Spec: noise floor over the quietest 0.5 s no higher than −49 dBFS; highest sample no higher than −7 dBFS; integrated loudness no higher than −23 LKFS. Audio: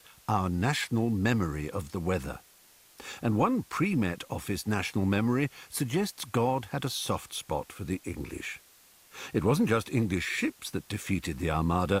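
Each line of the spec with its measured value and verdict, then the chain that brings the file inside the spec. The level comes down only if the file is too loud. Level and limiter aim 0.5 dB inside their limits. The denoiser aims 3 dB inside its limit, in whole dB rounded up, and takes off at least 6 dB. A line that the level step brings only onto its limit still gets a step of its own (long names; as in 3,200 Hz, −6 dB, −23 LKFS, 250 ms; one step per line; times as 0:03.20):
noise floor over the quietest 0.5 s −59 dBFS: in spec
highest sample −12.5 dBFS: in spec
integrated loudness −30.0 LKFS: in spec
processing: no processing needed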